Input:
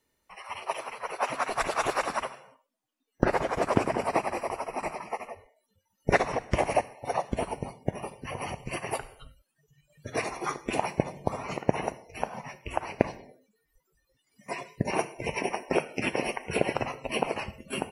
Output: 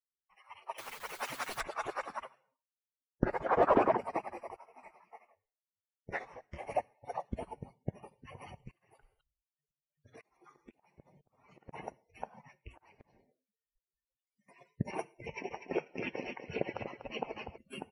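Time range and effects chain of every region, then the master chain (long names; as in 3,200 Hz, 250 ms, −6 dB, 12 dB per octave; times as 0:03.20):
0:00.78–0:01.61: hold until the input has moved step −46 dBFS + every bin compressed towards the loudest bin 2 to 1
0:03.46–0:03.97: parametric band 2,200 Hz −3.5 dB 0.23 octaves + mid-hump overdrive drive 24 dB, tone 1,000 Hz, clips at −6.5 dBFS
0:04.56–0:06.67: low-shelf EQ 490 Hz −5.5 dB + micro pitch shift up and down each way 58 cents
0:08.71–0:11.73: downward compressor 3 to 1, threshold −36 dBFS + shaped tremolo saw up 2 Hz, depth 95%
0:12.70–0:14.61: notch filter 1,300 Hz, Q 24 + downward compressor 16 to 1, threshold −38 dBFS
0:15.26–0:17.58: linear-phase brick-wall low-pass 6,500 Hz + repeating echo 244 ms, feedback 27%, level −6.5 dB
whole clip: spectral dynamics exaggerated over time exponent 1.5; high-shelf EQ 3,100 Hz −10 dB; level −4 dB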